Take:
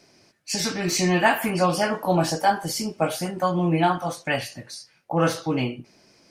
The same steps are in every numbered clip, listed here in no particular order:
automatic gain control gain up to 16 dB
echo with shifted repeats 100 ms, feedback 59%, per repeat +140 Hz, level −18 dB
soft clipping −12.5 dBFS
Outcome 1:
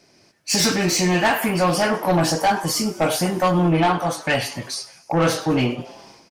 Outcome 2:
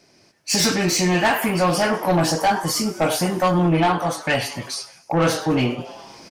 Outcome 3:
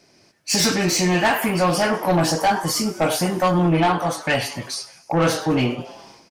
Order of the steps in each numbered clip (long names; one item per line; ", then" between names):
automatic gain control, then soft clipping, then echo with shifted repeats
echo with shifted repeats, then automatic gain control, then soft clipping
automatic gain control, then echo with shifted repeats, then soft clipping